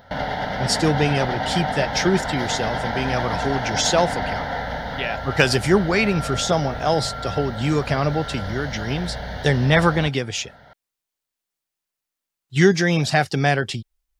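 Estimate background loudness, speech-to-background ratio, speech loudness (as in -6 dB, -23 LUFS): -28.0 LUFS, 6.5 dB, -21.5 LUFS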